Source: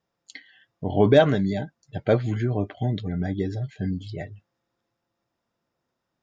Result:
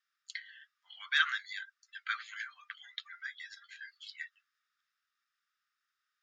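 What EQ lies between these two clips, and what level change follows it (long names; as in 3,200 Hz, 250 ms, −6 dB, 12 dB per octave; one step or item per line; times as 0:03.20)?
Chebyshev high-pass with heavy ripple 1,200 Hz, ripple 3 dB
high-shelf EQ 4,800 Hz −8 dB
+3.5 dB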